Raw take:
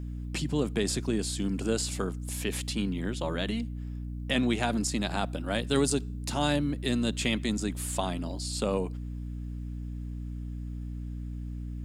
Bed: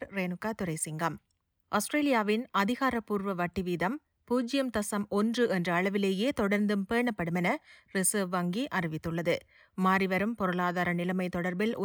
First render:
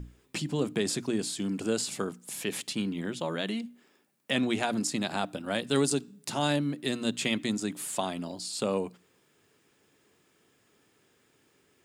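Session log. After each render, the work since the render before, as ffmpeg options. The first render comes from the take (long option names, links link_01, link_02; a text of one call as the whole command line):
ffmpeg -i in.wav -af "bandreject=frequency=60:width_type=h:width=6,bandreject=frequency=120:width_type=h:width=6,bandreject=frequency=180:width_type=h:width=6,bandreject=frequency=240:width_type=h:width=6,bandreject=frequency=300:width_type=h:width=6" out.wav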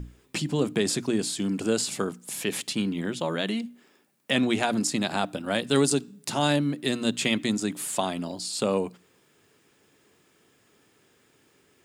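ffmpeg -i in.wav -af "volume=4dB" out.wav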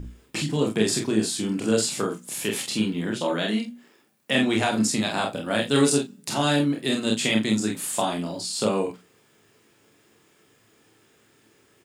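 ffmpeg -i in.wav -filter_complex "[0:a]asplit=2[link_01][link_02];[link_02]adelay=37,volume=-12dB[link_03];[link_01][link_03]amix=inputs=2:normalize=0,aecho=1:1:28|46:0.631|0.596" out.wav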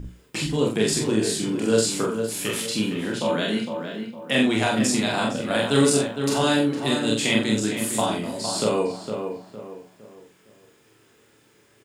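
ffmpeg -i in.wav -filter_complex "[0:a]asplit=2[link_01][link_02];[link_02]adelay=44,volume=-5dB[link_03];[link_01][link_03]amix=inputs=2:normalize=0,asplit=2[link_04][link_05];[link_05]adelay=459,lowpass=frequency=2000:poles=1,volume=-6.5dB,asplit=2[link_06][link_07];[link_07]adelay=459,lowpass=frequency=2000:poles=1,volume=0.37,asplit=2[link_08][link_09];[link_09]adelay=459,lowpass=frequency=2000:poles=1,volume=0.37,asplit=2[link_10][link_11];[link_11]adelay=459,lowpass=frequency=2000:poles=1,volume=0.37[link_12];[link_04][link_06][link_08][link_10][link_12]amix=inputs=5:normalize=0" out.wav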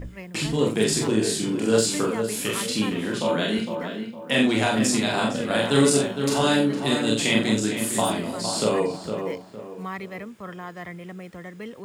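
ffmpeg -i in.wav -i bed.wav -filter_complex "[1:a]volume=-7.5dB[link_01];[0:a][link_01]amix=inputs=2:normalize=0" out.wav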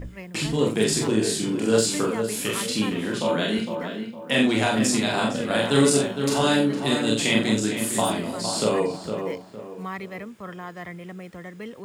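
ffmpeg -i in.wav -af anull out.wav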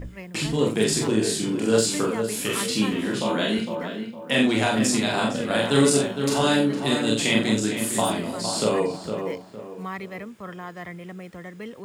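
ffmpeg -i in.wav -filter_complex "[0:a]asettb=1/sr,asplit=3[link_01][link_02][link_03];[link_01]atrim=end=2.494[link_04];[link_02]atrim=start=2.49:end=3.54,asetpts=PTS-STARTPTS,afade=type=in:duration=0.004:curve=qsin,afade=type=out:start_time=1.046:duration=0.004:curve=qsin,asplit=2[link_05][link_06];[link_06]adelay=15,volume=-5.5dB[link_07];[link_05][link_07]amix=inputs=2:normalize=0,atrim=end_sample=46305[link_08];[link_03]atrim=start=3.536[link_09];[link_04][link_08]acrossfade=duration=0.004:curve1=hsin:curve2=qsin[link_10];[link_10][link_09]acrossfade=duration=0.004:curve1=qsin:curve2=hsin" out.wav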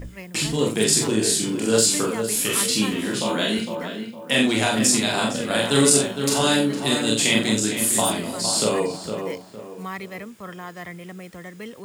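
ffmpeg -i in.wav -af "highshelf=frequency=4100:gain=9.5" out.wav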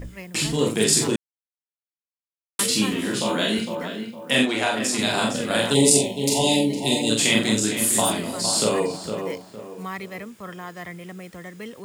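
ffmpeg -i in.wav -filter_complex "[0:a]asplit=3[link_01][link_02][link_03];[link_01]afade=type=out:start_time=4.44:duration=0.02[link_04];[link_02]bass=frequency=250:gain=-12,treble=frequency=4000:gain=-8,afade=type=in:start_time=4.44:duration=0.02,afade=type=out:start_time=4.98:duration=0.02[link_05];[link_03]afade=type=in:start_time=4.98:duration=0.02[link_06];[link_04][link_05][link_06]amix=inputs=3:normalize=0,asplit=3[link_07][link_08][link_09];[link_07]afade=type=out:start_time=5.73:duration=0.02[link_10];[link_08]asuperstop=centerf=1400:order=12:qfactor=1.4,afade=type=in:start_time=5.73:duration=0.02,afade=type=out:start_time=7.09:duration=0.02[link_11];[link_09]afade=type=in:start_time=7.09:duration=0.02[link_12];[link_10][link_11][link_12]amix=inputs=3:normalize=0,asplit=3[link_13][link_14][link_15];[link_13]atrim=end=1.16,asetpts=PTS-STARTPTS,afade=type=out:start_time=1.156:duration=0.004:curve=hsin[link_16];[link_14]atrim=start=1.16:end=2.59,asetpts=PTS-STARTPTS,volume=0[link_17];[link_15]atrim=start=2.59,asetpts=PTS-STARTPTS,afade=type=in:duration=0.004:curve=hsin[link_18];[link_16][link_17][link_18]concat=n=3:v=0:a=1" out.wav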